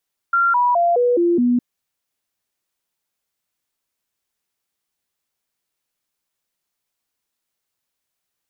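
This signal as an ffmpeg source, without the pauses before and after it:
-f lavfi -i "aevalsrc='0.224*clip(min(mod(t,0.21),0.21-mod(t,0.21))/0.005,0,1)*sin(2*PI*1380*pow(2,-floor(t/0.21)/2)*mod(t,0.21))':d=1.26:s=44100"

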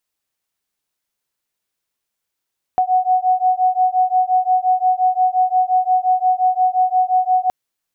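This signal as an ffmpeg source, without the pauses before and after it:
-f lavfi -i "aevalsrc='0.158*(sin(2*PI*737*t)+sin(2*PI*742.7*t))':d=4.72:s=44100"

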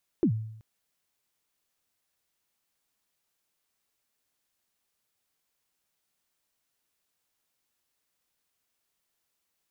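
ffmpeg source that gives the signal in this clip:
-f lavfi -i "aevalsrc='0.133*pow(10,-3*t/0.75)*sin(2*PI*(390*0.084/log(110/390)*(exp(log(110/390)*min(t,0.084)/0.084)-1)+110*max(t-0.084,0)))':d=0.38:s=44100"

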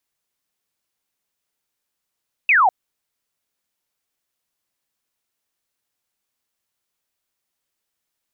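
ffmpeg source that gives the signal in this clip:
-f lavfi -i "aevalsrc='0.282*clip(t/0.002,0,1)*clip((0.2-t)/0.002,0,1)*sin(2*PI*2700*0.2/log(700/2700)*(exp(log(700/2700)*t/0.2)-1))':d=0.2:s=44100"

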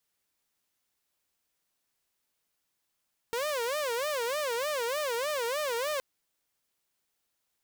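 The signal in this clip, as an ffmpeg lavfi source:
-f lavfi -i "aevalsrc='0.0473*(2*mod((535.5*t-75.5/(2*PI*3.3)*sin(2*PI*3.3*t)),1)-1)':d=2.67:s=44100"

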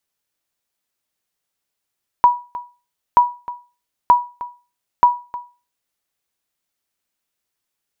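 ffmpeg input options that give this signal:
-f lavfi -i "aevalsrc='0.708*(sin(2*PI*972*mod(t,0.93))*exp(-6.91*mod(t,0.93)/0.32)+0.133*sin(2*PI*972*max(mod(t,0.93)-0.31,0))*exp(-6.91*max(mod(t,0.93)-0.31,0)/0.32))':d=3.72:s=44100"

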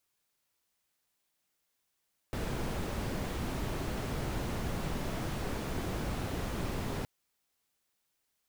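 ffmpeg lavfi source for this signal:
-f lavfi -i "anoisesrc=c=brown:a=0.0881:d=4.72:r=44100:seed=1"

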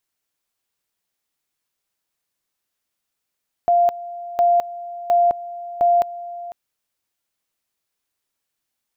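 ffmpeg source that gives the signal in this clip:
-f lavfi -i "aevalsrc='pow(10,(-12-17*gte(mod(t,0.71),0.21))/20)*sin(2*PI*696*t)':d=2.84:s=44100"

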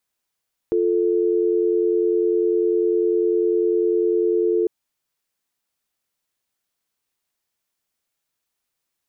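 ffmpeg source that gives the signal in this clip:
-f lavfi -i "aevalsrc='0.112*(sin(2*PI*350*t)+sin(2*PI*440*t))':d=3.95:s=44100"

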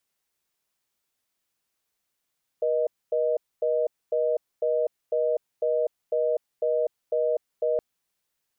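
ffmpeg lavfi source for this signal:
-f lavfi -i "aevalsrc='0.0631*(sin(2*PI*480*t)+sin(2*PI*620*t))*clip(min(mod(t,0.5),0.25-mod(t,0.5))/0.005,0,1)':d=5.17:s=44100"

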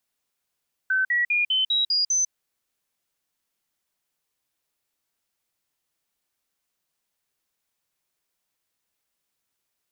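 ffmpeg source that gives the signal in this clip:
-f lavfi -i "aevalsrc='0.112*clip(min(mod(t,0.2),0.15-mod(t,0.2))/0.005,0,1)*sin(2*PI*1530*pow(2,floor(t/0.2)/3)*mod(t,0.2))':d=1.4:s=44100"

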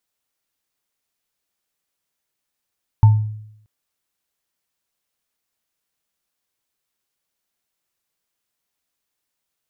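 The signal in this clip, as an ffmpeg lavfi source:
-f lavfi -i "aevalsrc='0.596*pow(10,-3*t/0.76)*sin(2*PI*107*t)+0.106*pow(10,-3*t/0.29)*sin(2*PI*892*t)':d=0.63:s=44100"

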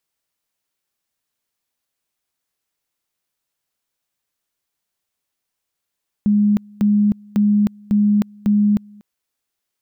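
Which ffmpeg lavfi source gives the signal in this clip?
-f lavfi -i "aevalsrc='pow(10,(-11.5-28*gte(mod(t,0.55),0.31))/20)*sin(2*PI*207*t)':d=2.75:s=44100"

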